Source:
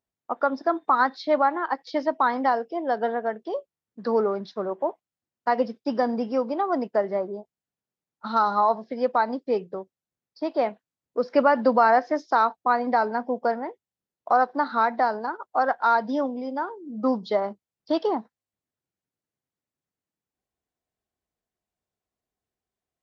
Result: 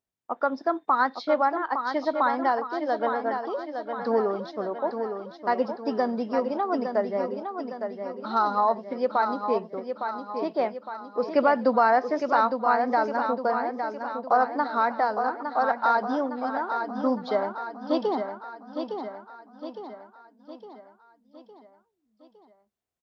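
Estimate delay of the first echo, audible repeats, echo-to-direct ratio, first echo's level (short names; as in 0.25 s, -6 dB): 0.86 s, 5, -5.5 dB, -7.0 dB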